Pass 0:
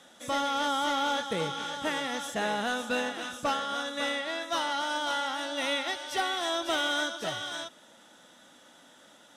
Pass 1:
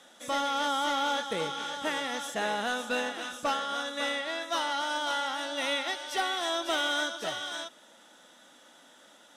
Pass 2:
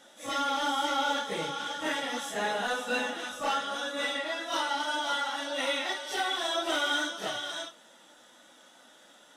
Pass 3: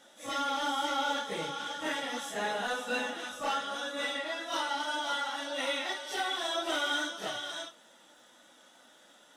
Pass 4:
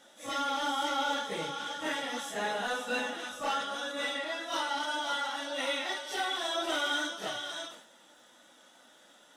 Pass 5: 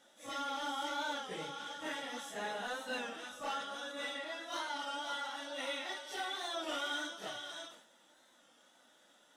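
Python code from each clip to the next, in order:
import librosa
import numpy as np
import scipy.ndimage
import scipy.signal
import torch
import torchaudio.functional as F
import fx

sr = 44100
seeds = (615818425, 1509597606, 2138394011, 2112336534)

y1 = fx.peak_eq(x, sr, hz=96.0, db=-12.5, octaves=1.5)
y2 = fx.phase_scramble(y1, sr, seeds[0], window_ms=100)
y3 = fx.dmg_crackle(y2, sr, seeds[1], per_s=61.0, level_db=-55.0)
y3 = y3 * 10.0 ** (-2.5 / 20.0)
y4 = fx.sustainer(y3, sr, db_per_s=84.0)
y5 = fx.record_warp(y4, sr, rpm=33.33, depth_cents=100.0)
y5 = y5 * 10.0 ** (-7.0 / 20.0)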